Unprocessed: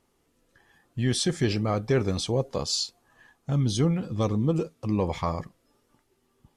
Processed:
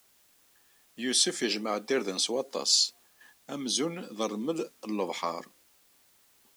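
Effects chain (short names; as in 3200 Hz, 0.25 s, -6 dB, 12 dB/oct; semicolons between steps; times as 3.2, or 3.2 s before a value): gate -56 dBFS, range -10 dB; steep high-pass 220 Hz 36 dB/oct; high shelf 2100 Hz +10 dB; requantised 10-bit, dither triangular; gain -4 dB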